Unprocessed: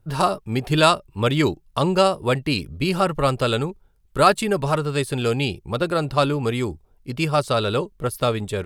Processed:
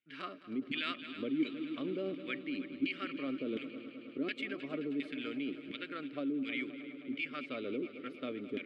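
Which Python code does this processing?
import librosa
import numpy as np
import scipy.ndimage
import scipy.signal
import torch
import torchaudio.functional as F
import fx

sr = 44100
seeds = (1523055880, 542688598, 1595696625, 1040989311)

p1 = fx.filter_lfo_bandpass(x, sr, shape='saw_down', hz=1.4, low_hz=330.0, high_hz=2600.0, q=1.6)
p2 = fx.vowel_filter(p1, sr, vowel='i')
p3 = fx.echo_heads(p2, sr, ms=105, heads='second and third', feedback_pct=72, wet_db=-16.5)
p4 = fx.over_compress(p3, sr, threshold_db=-43.0, ratio=-0.5)
y = p3 + (p4 * librosa.db_to_amplitude(-0.5))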